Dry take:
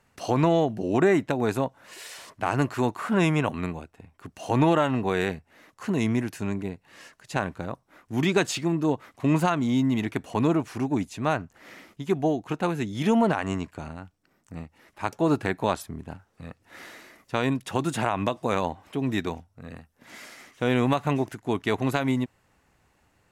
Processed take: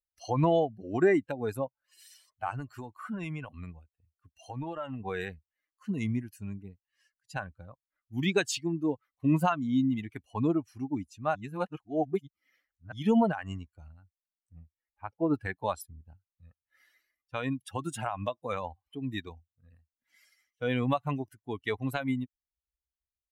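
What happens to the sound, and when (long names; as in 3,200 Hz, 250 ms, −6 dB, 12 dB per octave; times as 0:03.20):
0:02.50–0:05.00: downward compressor, threshold −23 dBFS
0:11.35–0:12.92: reverse
0:14.54–0:15.34: high-frequency loss of the air 280 metres
whole clip: spectral dynamics exaggerated over time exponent 2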